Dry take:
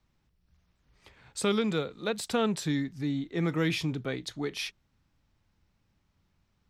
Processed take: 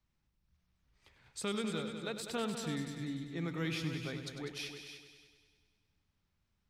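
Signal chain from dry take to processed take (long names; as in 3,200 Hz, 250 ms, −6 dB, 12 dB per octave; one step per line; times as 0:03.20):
parametric band 450 Hz −3.5 dB 2.8 octaves
echo machine with several playback heads 99 ms, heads all three, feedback 42%, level −11 dB
level −7.5 dB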